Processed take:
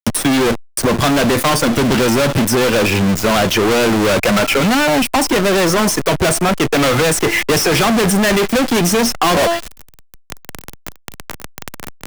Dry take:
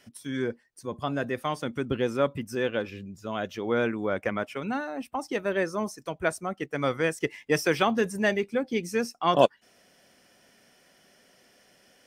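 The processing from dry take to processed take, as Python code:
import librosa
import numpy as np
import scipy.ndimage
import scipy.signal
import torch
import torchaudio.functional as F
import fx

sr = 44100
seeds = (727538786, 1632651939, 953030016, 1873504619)

y = fx.comb_fb(x, sr, f0_hz=340.0, decay_s=0.62, harmonics='all', damping=0.0, mix_pct=30)
y = fx.fuzz(y, sr, gain_db=45.0, gate_db=-53.0)
y = fx.power_curve(y, sr, exponent=0.35)
y = fx.band_squash(y, sr, depth_pct=70)
y = F.gain(torch.from_numpy(y), -1.0).numpy()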